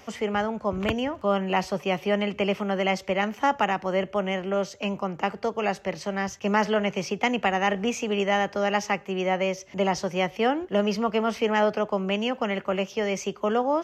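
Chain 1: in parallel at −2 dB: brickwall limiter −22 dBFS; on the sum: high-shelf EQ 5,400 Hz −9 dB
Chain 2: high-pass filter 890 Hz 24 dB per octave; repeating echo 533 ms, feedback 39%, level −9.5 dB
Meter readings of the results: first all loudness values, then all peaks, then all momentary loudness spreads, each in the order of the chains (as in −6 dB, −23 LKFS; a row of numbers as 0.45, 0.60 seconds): −23.5, −31.0 LKFS; −9.5, −12.0 dBFS; 4, 6 LU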